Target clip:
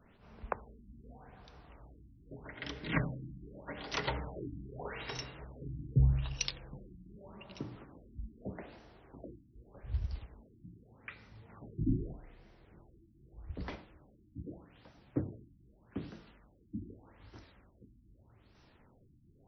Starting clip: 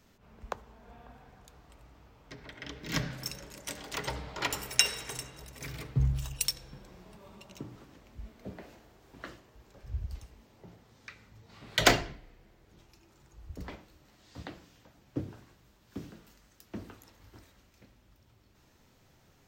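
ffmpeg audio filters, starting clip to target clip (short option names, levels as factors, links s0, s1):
-af "acrusher=bits=8:mode=log:mix=0:aa=0.000001,afftfilt=real='re*lt(b*sr/1024,330*pow(6200/330,0.5+0.5*sin(2*PI*0.82*pts/sr)))':imag='im*lt(b*sr/1024,330*pow(6200/330,0.5+0.5*sin(2*PI*0.82*pts/sr)))':win_size=1024:overlap=0.75,volume=1.12"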